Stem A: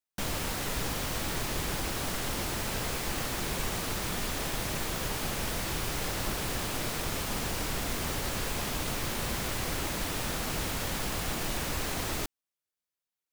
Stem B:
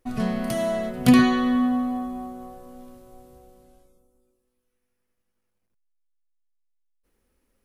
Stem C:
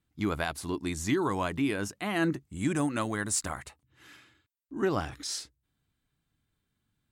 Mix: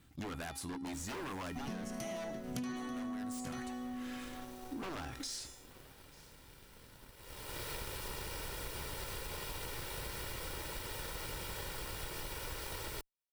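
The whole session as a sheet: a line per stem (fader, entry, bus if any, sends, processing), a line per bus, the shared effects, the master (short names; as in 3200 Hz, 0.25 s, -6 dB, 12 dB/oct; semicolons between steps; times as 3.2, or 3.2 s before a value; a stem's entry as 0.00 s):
-3.5 dB, 0.75 s, no send, no echo send, minimum comb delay 2.1 ms; bell 6700 Hz -7.5 dB 0.21 oct; auto duck -20 dB, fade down 1.30 s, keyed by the third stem
-7.0 dB, 1.50 s, no send, echo send -11.5 dB, bell 6000 Hz +14.5 dB 0.23 oct
+3.0 dB, 0.00 s, no send, echo send -23.5 dB, resonator 270 Hz, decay 0.4 s, harmonics odd, mix 70%; wavefolder -37.5 dBFS; fast leveller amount 50%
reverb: off
echo: echo 0.887 s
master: sample leveller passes 1; compressor 8:1, threshold -39 dBFS, peak gain reduction 22 dB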